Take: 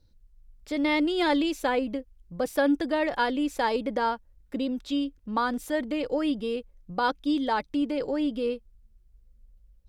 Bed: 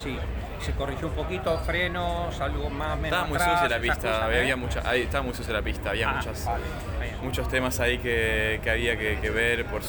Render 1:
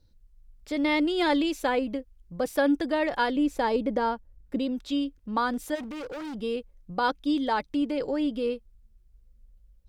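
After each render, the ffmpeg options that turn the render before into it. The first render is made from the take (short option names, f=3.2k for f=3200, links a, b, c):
-filter_complex "[0:a]asettb=1/sr,asplit=3[a][b][c];[a]atrim=end=3.364[d];[b]atrim=start=3.36:end=4.59,asetpts=PTS-STARTPTS,afade=t=in:d=0.004:c=qsin,afade=t=out:st=1.226:d=0.004:c=qsin,tiltshelf=f=720:g=4[e];[c]atrim=start=4.586[f];[d][e]acrossfade=d=0.004:c1=hsin:c2=qsin[g];[g][f]acrossfade=d=0.004:c1=qsin:c2=hsin,asplit=3[h][i][j];[h]afade=t=out:st=5.74:d=0.02[k];[i]volume=34.5dB,asoftclip=hard,volume=-34.5dB,afade=t=in:st=5.74:d=0.02,afade=t=out:st=6.34:d=0.02[l];[j]afade=t=in:st=6.34:d=0.02[m];[k][l][m]amix=inputs=3:normalize=0"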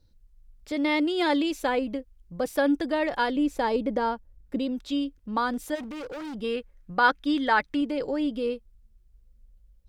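-filter_complex "[0:a]asettb=1/sr,asplit=3[a][b][c];[a]atrim=end=0.724[d];[b]atrim=start=0.72:end=1.51,asetpts=PTS-STARTPTS,afade=t=in:d=0.004:c=qsin,afade=t=out:st=0.786:d=0.004:c=qsin,highpass=65[e];[c]atrim=start=1.506[f];[d][e]acrossfade=d=0.004:c1=hsin:c2=qsin[g];[g][f]acrossfade=d=0.004:c1=qsin:c2=hsin,asettb=1/sr,asplit=3[h][i][j];[h]atrim=end=6.444[k];[i]atrim=start=6.44:end=7.81,asetpts=PTS-STARTPTS,afade=t=in:d=0.004:c=qsin,afade=t=out:st=1.366:d=0.004:c=qsin,equalizer=f=1.7k:t=o:w=1.2:g=11[l];[j]atrim=start=7.806[m];[k][l]acrossfade=d=0.004:c1=hsin:c2=qsin[n];[n][m]acrossfade=d=0.004:c1=qsin:c2=hsin"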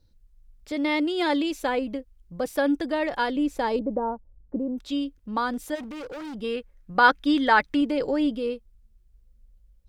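-filter_complex "[0:a]asettb=1/sr,asplit=3[a][b][c];[a]atrim=end=3.794[d];[b]atrim=start=3.79:end=4.78,asetpts=PTS-STARTPTS,afade=t=in:d=0.004:c=qsin,afade=t=out:st=0.986:d=0.004:c=qsin,lowpass=f=1k:w=0.5412,lowpass=f=1k:w=1.3066[e];[c]atrim=start=4.776[f];[d][e]acrossfade=d=0.004:c1=hsin:c2=qsin[g];[g][f]acrossfade=d=0.004:c1=qsin:c2=hsin,asplit=3[h][i][j];[h]atrim=end=6.952[k];[i]atrim=start=6.948:end=8.352,asetpts=PTS-STARTPTS,volume=3.5dB[l];[j]atrim=start=8.348[m];[k][l]acrossfade=d=0.004:c1=hsin:c2=hsin[n];[n][m]acrossfade=d=0.004:c1=hsin:c2=hsin"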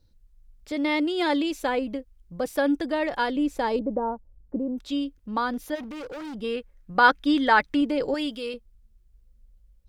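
-filter_complex "[0:a]asettb=1/sr,asplit=3[a][b][c];[a]atrim=end=5.384[d];[b]atrim=start=5.38:end=5.91,asetpts=PTS-STARTPTS,afade=t=in:d=0.004:c=qsin,afade=t=out:st=0.526:d=0.004:c=qsin,equalizer=f=8k:w=4.5:g=-13.5[e];[c]atrim=start=5.906[f];[d][e]acrossfade=d=0.004:c1=hsin:c2=qsin[g];[g][f]acrossfade=d=0.004:c1=qsin:c2=hsin,asettb=1/sr,asplit=3[h][i][j];[h]atrim=end=8.144[k];[i]atrim=start=8.14:end=8.54,asetpts=PTS-STARTPTS,afade=t=in:d=0.004:c=qsin,afade=t=out:st=0.396:d=0.004:c=qsin,tiltshelf=f=1.1k:g=-7.5[l];[j]atrim=start=8.536[m];[k][l]acrossfade=d=0.004:c1=hsin:c2=qsin[n];[n][m]acrossfade=d=0.004:c1=qsin:c2=hsin"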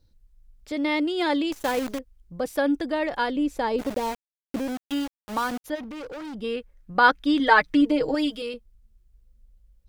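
-filter_complex "[0:a]asettb=1/sr,asplit=3[a][b][c];[a]atrim=end=1.524[d];[b]atrim=start=1.52:end=1.99,asetpts=PTS-STARTPTS,afade=t=in:d=0.004:c=qsin,afade=t=out:st=0.466:d=0.004:c=qsin,acrusher=bits=6:dc=4:mix=0:aa=0.000001[e];[c]atrim=start=1.986[f];[d][e]acrossfade=d=0.004:c1=hsin:c2=qsin[g];[g][f]acrossfade=d=0.004:c1=qsin:c2=hsin,asplit=3[h][i][j];[h]afade=t=out:st=3.78:d=0.02[k];[i]aeval=exprs='val(0)*gte(abs(val(0)),0.0299)':c=same,afade=t=in:st=3.78:d=0.02,afade=t=out:st=5.64:d=0.02[l];[j]afade=t=in:st=5.64:d=0.02[m];[k][l][m]amix=inputs=3:normalize=0,asettb=1/sr,asplit=3[n][o][p];[n]atrim=end=7.394[q];[o]atrim=start=7.39:end=8.42,asetpts=PTS-STARTPTS,afade=t=in:d=0.004:c=qsin,afade=t=out:st=1.026:d=0.004:c=qsin,aecho=1:1:6.4:0.81,atrim=end_sample=45423[r];[p]atrim=start=8.416[s];[q][r]acrossfade=d=0.004:c1=hsin:c2=qsin[t];[t][s]acrossfade=d=0.004:c1=qsin:c2=hsin"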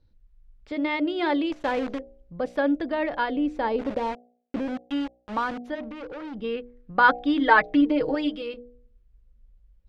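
-af "lowpass=3k,bandreject=f=60.71:t=h:w=4,bandreject=f=121.42:t=h:w=4,bandreject=f=182.13:t=h:w=4,bandreject=f=242.84:t=h:w=4,bandreject=f=303.55:t=h:w=4,bandreject=f=364.26:t=h:w=4,bandreject=f=424.97:t=h:w=4,bandreject=f=485.68:t=h:w=4,bandreject=f=546.39:t=h:w=4,bandreject=f=607.1:t=h:w=4,bandreject=f=667.81:t=h:w=4,bandreject=f=728.52:t=h:w=4,bandreject=f=789.23:t=h:w=4"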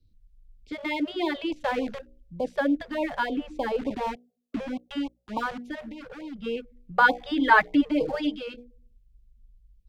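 -filter_complex "[0:a]acrossover=split=140|410|2300[a][b][c][d];[c]aeval=exprs='sgn(val(0))*max(abs(val(0))-0.00398,0)':c=same[e];[a][b][e][d]amix=inputs=4:normalize=0,afftfilt=real='re*(1-between(b*sr/1024,260*pow(1600/260,0.5+0.5*sin(2*PI*3.4*pts/sr))/1.41,260*pow(1600/260,0.5+0.5*sin(2*PI*3.4*pts/sr))*1.41))':imag='im*(1-between(b*sr/1024,260*pow(1600/260,0.5+0.5*sin(2*PI*3.4*pts/sr))/1.41,260*pow(1600/260,0.5+0.5*sin(2*PI*3.4*pts/sr))*1.41))':win_size=1024:overlap=0.75"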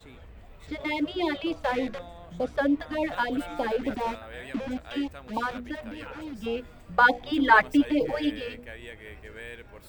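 -filter_complex "[1:a]volume=-17.5dB[a];[0:a][a]amix=inputs=2:normalize=0"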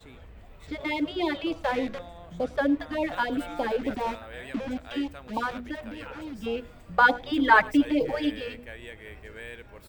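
-filter_complex "[0:a]asplit=2[a][b];[b]adelay=105,volume=-23dB,highshelf=f=4k:g=-2.36[c];[a][c]amix=inputs=2:normalize=0"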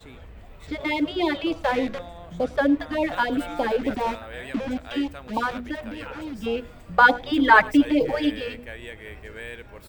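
-af "volume=4dB,alimiter=limit=-2dB:level=0:latency=1"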